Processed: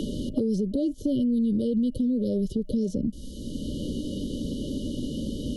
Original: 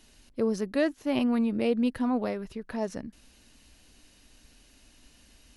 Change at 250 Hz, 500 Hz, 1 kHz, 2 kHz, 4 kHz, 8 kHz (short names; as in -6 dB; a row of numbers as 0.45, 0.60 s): +4.5 dB, -0.5 dB, under -20 dB, under -30 dB, +3.0 dB, n/a